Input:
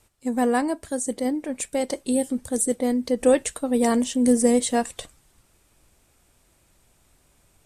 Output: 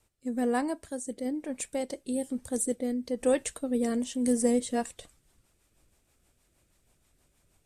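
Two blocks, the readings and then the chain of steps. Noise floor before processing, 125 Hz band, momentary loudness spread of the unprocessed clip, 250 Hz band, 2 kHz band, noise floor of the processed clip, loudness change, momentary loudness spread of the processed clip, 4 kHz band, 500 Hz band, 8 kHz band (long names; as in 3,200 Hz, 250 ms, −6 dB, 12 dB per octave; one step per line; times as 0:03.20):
−63 dBFS, can't be measured, 9 LU, −7.0 dB, −7.5 dB, −71 dBFS, −7.5 dB, 8 LU, −9.0 dB, −7.5 dB, −7.5 dB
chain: rotating-speaker cabinet horn 1.1 Hz, later 6.3 Hz, at 0:04.46
level −5.5 dB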